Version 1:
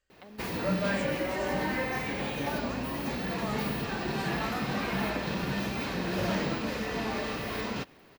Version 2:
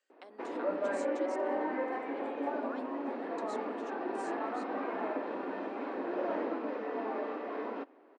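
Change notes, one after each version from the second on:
background: add low-pass filter 1,100 Hz 12 dB per octave
master: add elliptic high-pass filter 270 Hz, stop band 50 dB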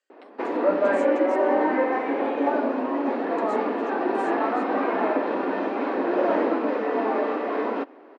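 background +12.0 dB

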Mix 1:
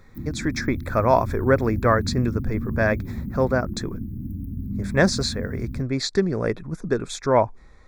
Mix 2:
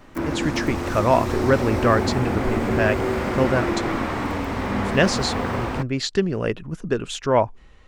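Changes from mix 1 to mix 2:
speech: remove Butterworth band-reject 2,900 Hz, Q 2.6
background: remove inverse Chebyshev band-stop filter 540–7,200 Hz, stop band 50 dB

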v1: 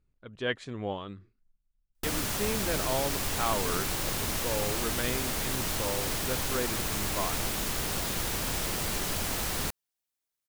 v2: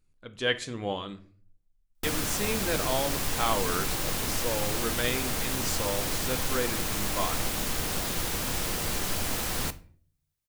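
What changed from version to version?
speech: remove low-pass filter 1,800 Hz 6 dB per octave
reverb: on, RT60 0.50 s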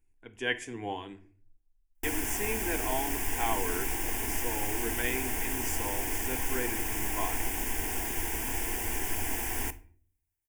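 master: add phaser with its sweep stopped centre 830 Hz, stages 8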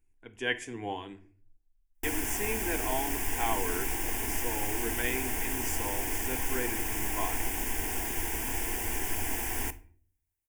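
nothing changed

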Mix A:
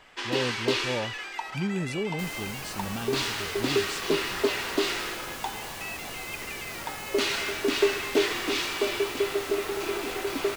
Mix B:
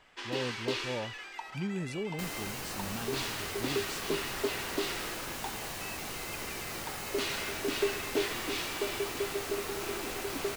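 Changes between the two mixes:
speech −5.5 dB
first sound −7.5 dB

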